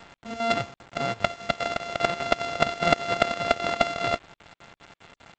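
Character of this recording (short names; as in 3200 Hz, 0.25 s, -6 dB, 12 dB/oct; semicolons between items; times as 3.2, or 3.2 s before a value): a buzz of ramps at a fixed pitch in blocks of 64 samples; chopped level 5 Hz, depth 65%, duty 70%; a quantiser's noise floor 8-bit, dither none; G.722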